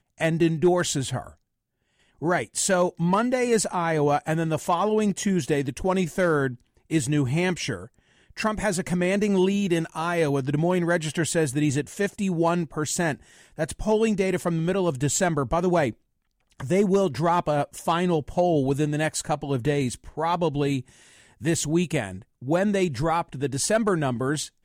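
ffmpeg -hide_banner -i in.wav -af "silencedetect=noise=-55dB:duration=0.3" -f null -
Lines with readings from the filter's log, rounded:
silence_start: 1.35
silence_end: 2.00 | silence_duration: 0.64
silence_start: 15.97
silence_end: 16.50 | silence_duration: 0.53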